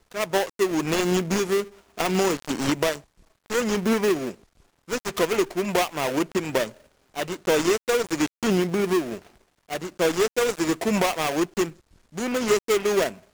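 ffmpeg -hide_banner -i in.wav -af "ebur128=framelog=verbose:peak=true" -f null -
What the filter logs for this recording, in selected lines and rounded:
Integrated loudness:
  I:         -24.5 LUFS
  Threshold: -35.0 LUFS
Loudness range:
  LRA:         1.7 LU
  Threshold: -45.2 LUFS
  LRA low:   -26.0 LUFS
  LRA high:  -24.3 LUFS
True peak:
  Peak:       -6.7 dBFS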